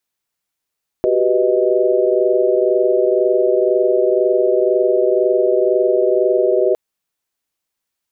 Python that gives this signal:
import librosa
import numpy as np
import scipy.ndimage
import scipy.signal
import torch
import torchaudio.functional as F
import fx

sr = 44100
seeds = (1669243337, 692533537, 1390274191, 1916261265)

y = fx.chord(sr, length_s=5.71, notes=(66, 67, 71, 75), wave='sine', level_db=-17.5)